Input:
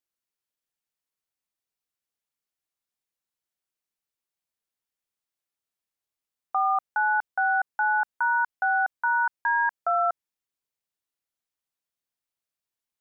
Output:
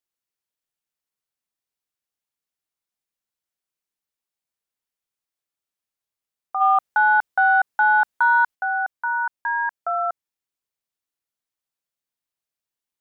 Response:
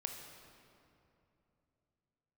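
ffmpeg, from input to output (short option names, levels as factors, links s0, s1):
-filter_complex "[0:a]asplit=3[s0][s1][s2];[s0]afade=t=out:st=6.6:d=0.02[s3];[s1]acontrast=86,afade=t=in:st=6.6:d=0.02,afade=t=out:st=8.54:d=0.02[s4];[s2]afade=t=in:st=8.54:d=0.02[s5];[s3][s4][s5]amix=inputs=3:normalize=0"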